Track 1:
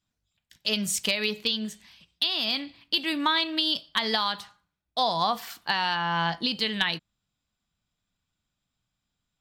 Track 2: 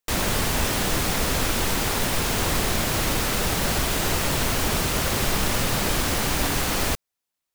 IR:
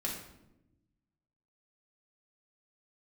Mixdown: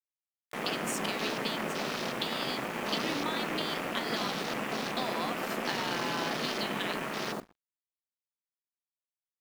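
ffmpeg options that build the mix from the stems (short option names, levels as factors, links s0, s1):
-filter_complex "[0:a]acompressor=threshold=0.0224:ratio=6,volume=1[s0];[1:a]afwtdn=0.0316,aeval=exprs='val(0)*sin(2*PI*130*n/s)':c=same,adelay=450,volume=0.631,asplit=2[s1][s2];[s2]volume=0.251[s3];[2:a]atrim=start_sample=2205[s4];[s3][s4]afir=irnorm=-1:irlink=0[s5];[s0][s1][s5]amix=inputs=3:normalize=0,highpass=f=210:w=0.5412,highpass=f=210:w=1.3066,aeval=exprs='sgn(val(0))*max(abs(val(0))-0.00596,0)':c=same"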